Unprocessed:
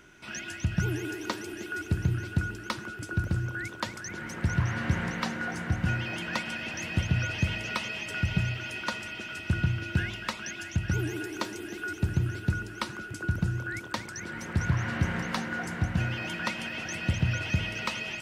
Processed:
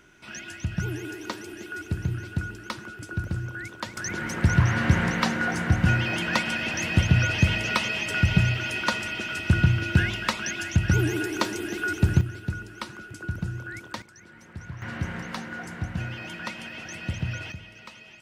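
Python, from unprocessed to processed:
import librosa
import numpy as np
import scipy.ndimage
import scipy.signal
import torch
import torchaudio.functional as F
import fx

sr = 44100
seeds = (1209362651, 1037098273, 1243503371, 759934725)

y = fx.gain(x, sr, db=fx.steps((0.0, -1.0), (3.97, 7.0), (12.21, -2.5), (14.02, -12.0), (14.82, -3.0), (17.52, -13.0)))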